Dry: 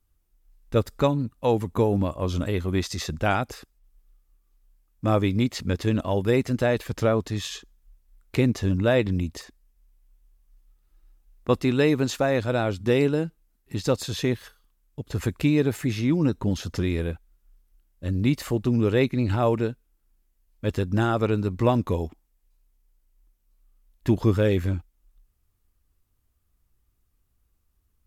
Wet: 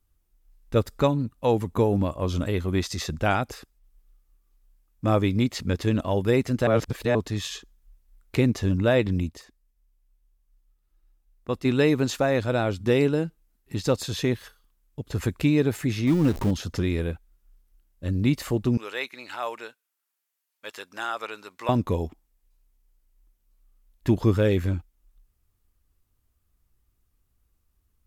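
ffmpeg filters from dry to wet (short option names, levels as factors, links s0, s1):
-filter_complex "[0:a]asettb=1/sr,asplit=3[s0][s1][s2];[s0]atrim=end=16.074[s3];[s1]atrim=start=16.07:end=16.51,asetpts=PTS-STARTPTS,afade=t=in:d=0.004:c=qsin,afade=t=out:st=0.436:d=0.004:c=qsin,aeval=exprs='val(0)+0.5*0.0335*sgn(val(0))':c=same[s4];[s2]atrim=start=16.506[s5];[s3][s4]acrossfade=d=0.004:c1=hsin:c2=qsin[s6];[s6][s5]acrossfade=d=0.004:c1=qsin:c2=hsin,asettb=1/sr,asplit=3[s7][s8][s9];[s7]atrim=end=18.774[s10];[s8]atrim=start=18.77:end=21.69,asetpts=PTS-STARTPTS,afade=t=in:d=0.004:c=qsin,afade=t=out:st=2.916:d=0.004:c=qsin,highpass=1000[s11];[s9]atrim=start=21.686[s12];[s10][s11]acrossfade=d=0.004:c1=hsin:c2=qsin[s13];[s13][s12]acrossfade=d=0.004:c1=qsin:c2=hsin,asplit=5[s14][s15][s16][s17][s18];[s14]atrim=end=6.672[s19];[s15]atrim=start=6.668:end=7.152,asetpts=PTS-STARTPTS,areverse[s20];[s16]atrim=start=7.148:end=9.292[s21];[s17]atrim=start=9.288:end=11.652,asetpts=PTS-STARTPTS,volume=0.473[s22];[s18]atrim=start=11.648[s23];[s19][s20]acrossfade=d=0.004:c1=hsin:c2=hsin[s24];[s24][s21]acrossfade=d=0.004:c1=hsin:c2=hsin[s25];[s25][s22]acrossfade=d=0.004:c1=hsin:c2=hsin[s26];[s26][s23]acrossfade=d=0.004:c1=hsin:c2=hsin"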